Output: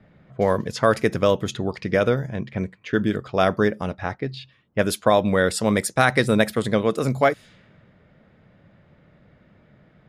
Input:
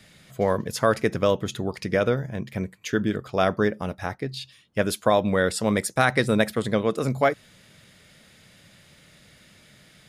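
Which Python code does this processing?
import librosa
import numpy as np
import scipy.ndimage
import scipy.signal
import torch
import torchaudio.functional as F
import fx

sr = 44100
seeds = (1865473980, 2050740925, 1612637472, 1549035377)

y = fx.env_lowpass(x, sr, base_hz=1000.0, full_db=-21.0)
y = y * librosa.db_to_amplitude(2.5)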